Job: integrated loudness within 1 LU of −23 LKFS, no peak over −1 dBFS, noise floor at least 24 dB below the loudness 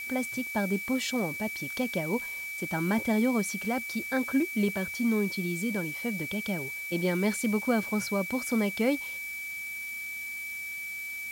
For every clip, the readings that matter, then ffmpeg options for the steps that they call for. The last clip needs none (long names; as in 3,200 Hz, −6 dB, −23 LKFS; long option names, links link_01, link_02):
interfering tone 2,300 Hz; level of the tone −35 dBFS; background noise floor −38 dBFS; target noise floor −54 dBFS; integrated loudness −30.0 LKFS; sample peak −15.0 dBFS; target loudness −23.0 LKFS
→ -af "bandreject=frequency=2300:width=30"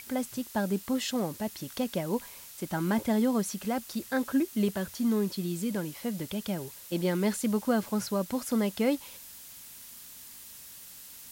interfering tone none found; background noise floor −48 dBFS; target noise floor −55 dBFS
→ -af "afftdn=noise_reduction=7:noise_floor=-48"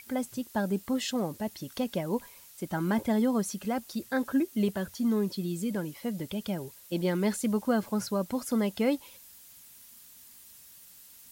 background noise floor −53 dBFS; target noise floor −55 dBFS
→ -af "afftdn=noise_reduction=6:noise_floor=-53"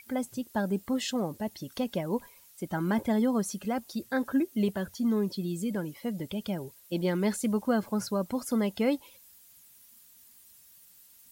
background noise floor −57 dBFS; integrated loudness −31.0 LKFS; sample peak −15.5 dBFS; target loudness −23.0 LKFS
→ -af "volume=8dB"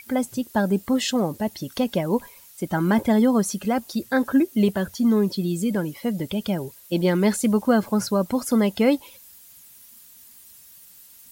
integrated loudness −23.0 LKFS; sample peak −7.5 dBFS; background noise floor −49 dBFS